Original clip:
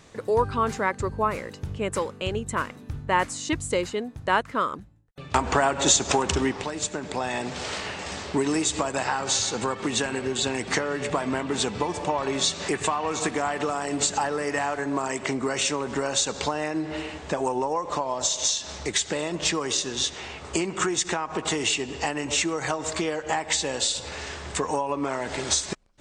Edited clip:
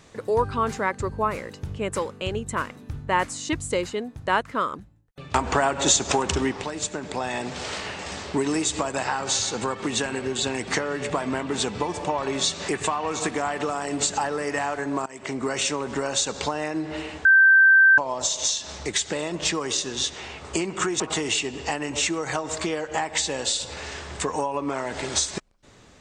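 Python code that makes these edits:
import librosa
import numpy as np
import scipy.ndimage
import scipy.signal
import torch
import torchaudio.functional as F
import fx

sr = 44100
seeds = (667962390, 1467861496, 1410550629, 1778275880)

y = fx.edit(x, sr, fx.fade_in_from(start_s=15.06, length_s=0.37, floor_db=-22.0),
    fx.bleep(start_s=17.25, length_s=0.73, hz=1560.0, db=-11.0),
    fx.cut(start_s=21.0, length_s=0.35), tone=tone)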